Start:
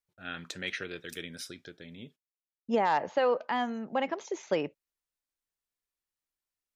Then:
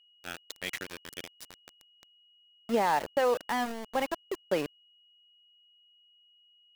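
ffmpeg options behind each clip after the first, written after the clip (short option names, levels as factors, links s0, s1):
-af "aeval=exprs='val(0)*gte(abs(val(0)),0.0211)':c=same,aeval=exprs='val(0)+0.000891*sin(2*PI*2900*n/s)':c=same"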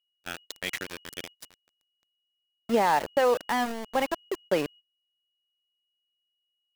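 -af "agate=range=0.0891:threshold=0.00355:ratio=16:detection=peak,volume=1.5"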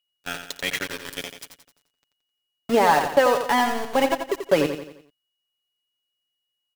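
-af "aecho=1:1:7.1:0.48,aecho=1:1:87|174|261|348|435:0.398|0.179|0.0806|0.0363|0.0163,volume=1.78"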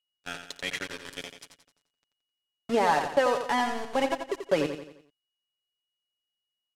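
-af "lowpass=9200,volume=0.501"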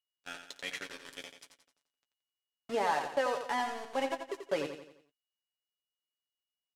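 -filter_complex "[0:a]lowshelf=f=200:g=-9,asplit=2[s0][s1];[s1]adelay=15,volume=0.282[s2];[s0][s2]amix=inputs=2:normalize=0,volume=0.473"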